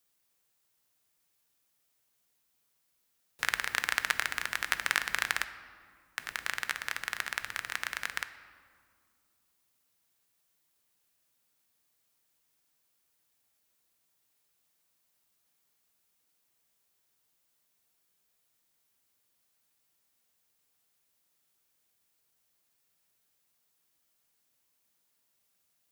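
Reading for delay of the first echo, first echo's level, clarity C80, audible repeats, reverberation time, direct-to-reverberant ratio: no echo, no echo, 14.0 dB, no echo, 2.1 s, 10.0 dB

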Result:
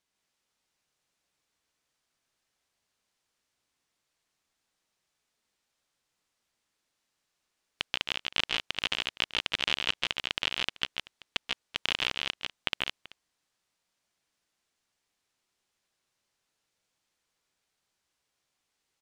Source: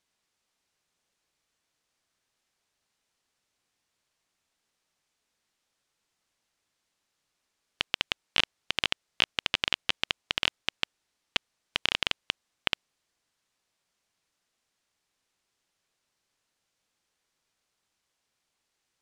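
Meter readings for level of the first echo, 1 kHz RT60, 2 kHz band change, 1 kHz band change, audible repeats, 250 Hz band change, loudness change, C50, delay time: -12.5 dB, no reverb, -1.0 dB, -1.0 dB, 3, -1.0 dB, -1.0 dB, no reverb, 133 ms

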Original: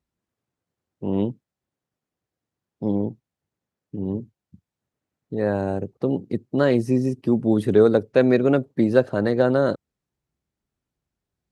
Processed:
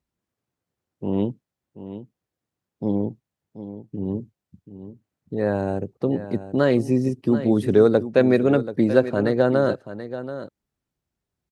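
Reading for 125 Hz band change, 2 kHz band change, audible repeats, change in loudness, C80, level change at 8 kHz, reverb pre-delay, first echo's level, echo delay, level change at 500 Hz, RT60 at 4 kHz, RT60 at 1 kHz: 0.0 dB, +0.5 dB, 1, 0.0 dB, no reverb, no reading, no reverb, -12.5 dB, 733 ms, 0.0 dB, no reverb, no reverb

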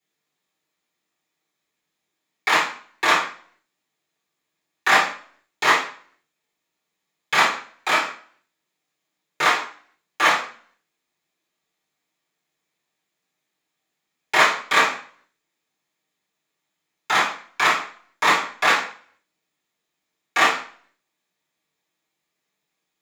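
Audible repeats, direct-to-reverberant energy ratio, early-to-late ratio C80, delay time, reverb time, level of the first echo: no echo, -9.5 dB, 11.0 dB, no echo, 0.45 s, no echo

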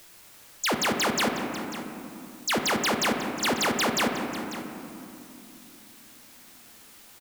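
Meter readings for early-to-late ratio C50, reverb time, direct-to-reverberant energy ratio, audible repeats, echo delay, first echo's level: 4.5 dB, 2.8 s, 2.5 dB, 1, 544 ms, -14.0 dB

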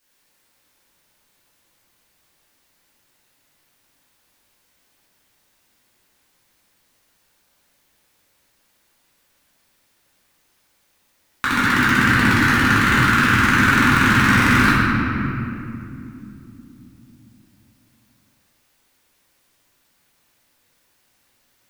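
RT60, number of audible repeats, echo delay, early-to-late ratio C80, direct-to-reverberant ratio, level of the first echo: 2.8 s, no echo, no echo, -1.0 dB, -11.0 dB, no echo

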